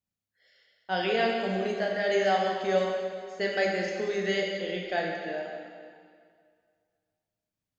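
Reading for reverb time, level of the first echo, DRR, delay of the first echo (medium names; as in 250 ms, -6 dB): 2.1 s, no echo, -0.5 dB, no echo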